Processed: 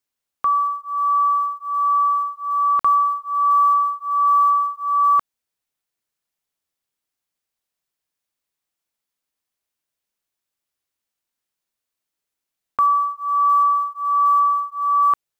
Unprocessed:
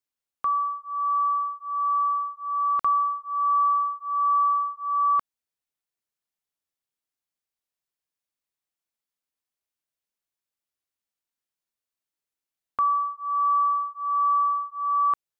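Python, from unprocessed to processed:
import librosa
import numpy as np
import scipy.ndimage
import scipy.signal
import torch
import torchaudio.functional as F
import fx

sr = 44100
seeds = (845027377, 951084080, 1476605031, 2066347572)

y = fx.block_float(x, sr, bits=7)
y = F.gain(torch.from_numpy(y), 6.0).numpy()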